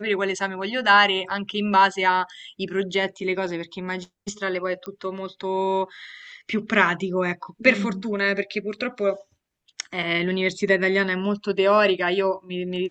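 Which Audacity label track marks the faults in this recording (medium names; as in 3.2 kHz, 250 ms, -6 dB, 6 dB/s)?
4.860000	4.860000	pop -20 dBFS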